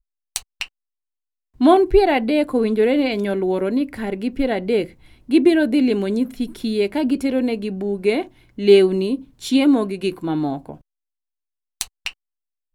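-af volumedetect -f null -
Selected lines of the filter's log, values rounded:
mean_volume: -19.8 dB
max_volume: -1.7 dB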